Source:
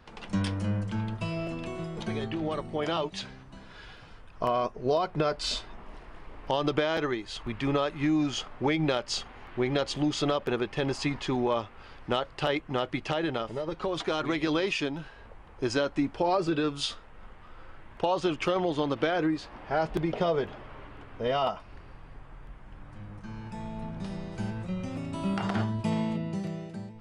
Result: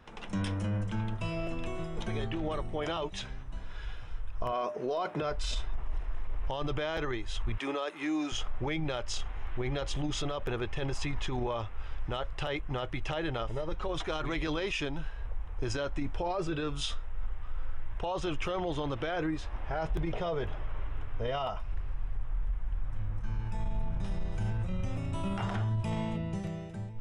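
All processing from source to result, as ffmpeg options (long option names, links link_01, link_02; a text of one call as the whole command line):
ffmpeg -i in.wav -filter_complex "[0:a]asettb=1/sr,asplit=3[link_01][link_02][link_03];[link_01]atrim=end=4.524[link_04];[link_02]atrim=start=4.52:end=5.22,asetpts=PTS-STARTPTS,afade=type=in:duration=0.004:curve=qsin,afade=type=out:start_time=0.696:duration=0.004:curve=qsin,highpass=frequency=190:width=0.5412,highpass=frequency=190:width=1.3066,bandreject=frequency=301.6:width_type=h:width=4,bandreject=frequency=603.2:width_type=h:width=4,bandreject=frequency=904.8:width_type=h:width=4,acontrast=77[link_05];[link_03]atrim=start=5.216[link_06];[link_04][link_05]acrossfade=duration=0.004:curve1=hsin:curve2=qsin[link_07];[link_07][link_06]acrossfade=duration=0.004:curve1=qsin:curve2=hsin,asettb=1/sr,asplit=3[link_08][link_09][link_10];[link_08]atrim=end=7.574[link_11];[link_09]atrim=start=7.57:end=8.32,asetpts=PTS-STARTPTS,afade=type=in:duration=0.004:curve=qsin,afade=type=out:start_time=0.746:duration=0.004:curve=qsin,highpass=frequency=270:width=0.5412,highpass=frequency=270:width=1.3066,highshelf=frequency=8300:gain=10.5[link_12];[link_10]atrim=start=8.316[link_13];[link_11][link_12]acrossfade=duration=0.004:curve1=hsin:curve2=qsin[link_14];[link_14][link_13]acrossfade=duration=0.004:curve1=qsin:curve2=hsin,bandreject=frequency=4500:width=5,asubboost=boost=9.5:cutoff=69,alimiter=limit=-23.5dB:level=0:latency=1:release=14,volume=-1dB" out.wav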